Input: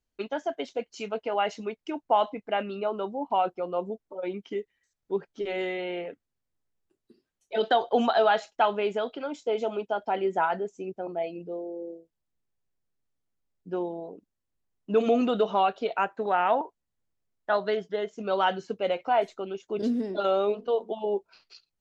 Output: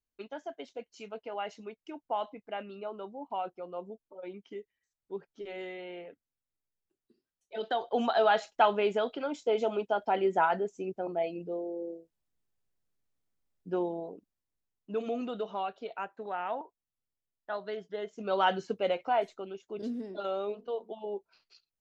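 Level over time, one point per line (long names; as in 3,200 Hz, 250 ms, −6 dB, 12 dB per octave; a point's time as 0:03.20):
0:07.59 −10 dB
0:08.47 −0.5 dB
0:13.99 −0.5 dB
0:15.05 −11 dB
0:17.65 −11 dB
0:18.59 0 dB
0:19.81 −9 dB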